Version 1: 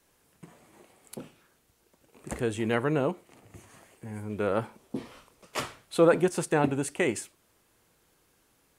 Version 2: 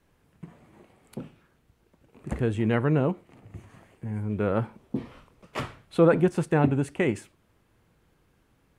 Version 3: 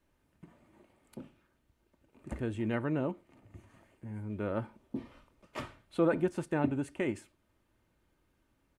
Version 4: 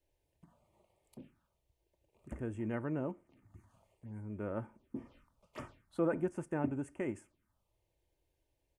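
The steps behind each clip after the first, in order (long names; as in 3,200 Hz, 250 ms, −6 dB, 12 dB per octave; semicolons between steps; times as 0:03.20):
bass and treble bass +9 dB, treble −11 dB
comb filter 3.3 ms, depth 38%; level −8.5 dB
phaser swept by the level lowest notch 210 Hz, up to 4,000 Hz, full sweep at −37 dBFS; level −4.5 dB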